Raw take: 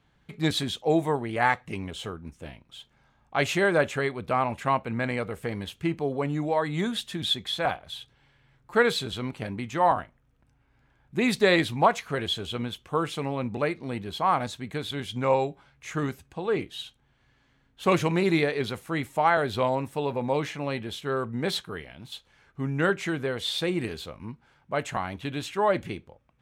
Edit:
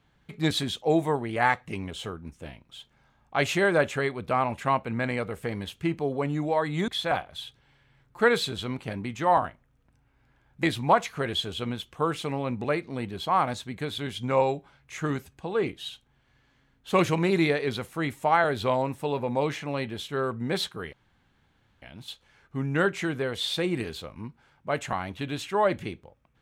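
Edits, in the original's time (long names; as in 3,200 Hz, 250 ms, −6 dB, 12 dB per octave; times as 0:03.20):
0:06.88–0:07.42: remove
0:11.17–0:11.56: remove
0:21.86: splice in room tone 0.89 s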